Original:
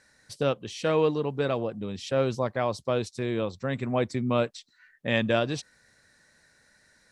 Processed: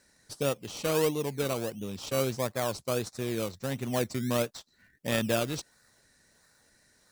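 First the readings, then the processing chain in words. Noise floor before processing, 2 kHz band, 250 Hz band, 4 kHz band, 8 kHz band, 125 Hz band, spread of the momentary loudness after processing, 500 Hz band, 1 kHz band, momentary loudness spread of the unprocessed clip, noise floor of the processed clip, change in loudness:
-64 dBFS, -4.0 dB, -3.0 dB, -0.5 dB, +7.5 dB, -3.0 dB, 8 LU, -3.5 dB, -4.5 dB, 9 LU, -66 dBFS, -3.0 dB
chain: in parallel at -3.5 dB: decimation with a swept rate 20×, swing 60% 1.5 Hz; on the sum: high shelf 4400 Hz +11 dB; gain -7.5 dB

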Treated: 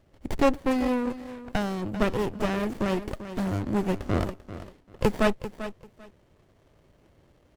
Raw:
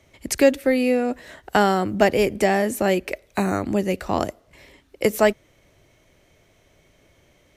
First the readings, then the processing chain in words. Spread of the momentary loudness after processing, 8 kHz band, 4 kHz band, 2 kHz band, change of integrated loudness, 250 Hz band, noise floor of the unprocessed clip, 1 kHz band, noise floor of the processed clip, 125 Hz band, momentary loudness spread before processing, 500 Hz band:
14 LU, -13.5 dB, -7.0 dB, -8.5 dB, -7.0 dB, -3.5 dB, -60 dBFS, -7.5 dB, -62 dBFS, 0.0 dB, 9 LU, -8.5 dB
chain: on a send: feedback echo 0.392 s, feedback 18%, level -13 dB; on the sum: vocal rider within 5 dB 2 s; running maximum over 33 samples; gain -5.5 dB

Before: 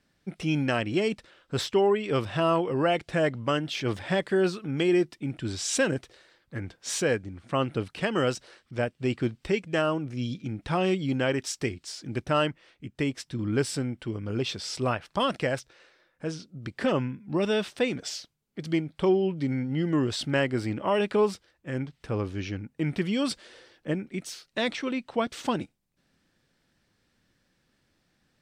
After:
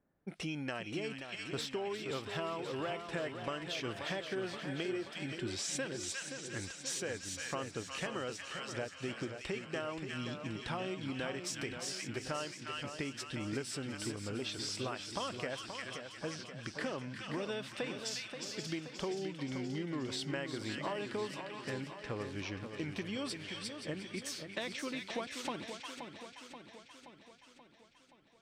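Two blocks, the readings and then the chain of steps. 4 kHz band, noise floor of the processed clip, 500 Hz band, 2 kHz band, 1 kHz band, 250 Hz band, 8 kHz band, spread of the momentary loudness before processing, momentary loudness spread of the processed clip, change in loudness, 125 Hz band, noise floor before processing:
-6.0 dB, -60 dBFS, -13.0 dB, -8.0 dB, -11.0 dB, -12.5 dB, -5.0 dB, 11 LU, 5 LU, -11.5 dB, -13.0 dB, -72 dBFS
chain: low shelf 320 Hz -8 dB; on a send: thin delay 0.353 s, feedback 35%, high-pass 1700 Hz, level -7 dB; on the sum: compressor, threshold -35 dBFS, peak gain reduction 13.5 dB; low-pass opened by the level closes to 800 Hz, open at -39.5 dBFS; warbling echo 0.528 s, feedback 59%, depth 80 cents, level -8 dB; gain -1.5 dB

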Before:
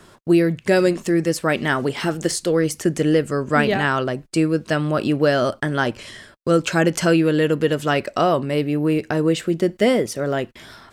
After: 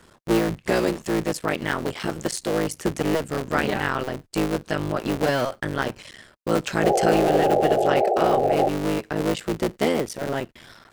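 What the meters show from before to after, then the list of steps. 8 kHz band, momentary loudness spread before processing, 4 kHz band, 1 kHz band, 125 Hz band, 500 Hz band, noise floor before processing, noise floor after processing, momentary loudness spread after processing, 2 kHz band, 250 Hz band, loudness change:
-4.0 dB, 6 LU, -3.5 dB, +1.0 dB, -6.0 dB, -2.5 dB, -51 dBFS, -56 dBFS, 10 LU, -4.5 dB, -5.5 dB, -3.5 dB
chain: cycle switcher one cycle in 3, muted; painted sound noise, 6.83–8.69, 340–840 Hz -17 dBFS; gain -3.5 dB

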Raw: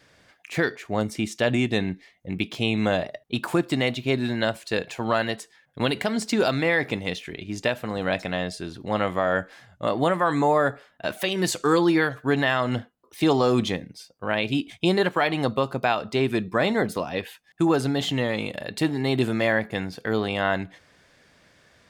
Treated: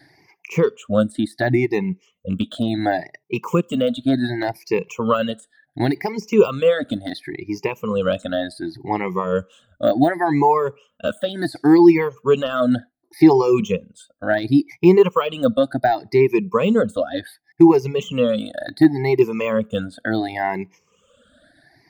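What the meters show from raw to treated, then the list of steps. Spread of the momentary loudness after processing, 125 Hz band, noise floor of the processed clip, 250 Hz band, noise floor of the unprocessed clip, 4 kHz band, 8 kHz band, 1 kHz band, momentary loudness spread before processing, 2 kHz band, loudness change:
13 LU, +3.0 dB, -67 dBFS, +7.0 dB, -61 dBFS, -3.0 dB, n/a, +4.0 dB, 10 LU, -2.0 dB, +5.5 dB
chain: moving spectral ripple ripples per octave 0.78, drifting +0.69 Hz, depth 21 dB; de-esser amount 70%; reverb removal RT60 1.1 s; bell 300 Hz +6.5 dB 2.5 oct; gain -2.5 dB

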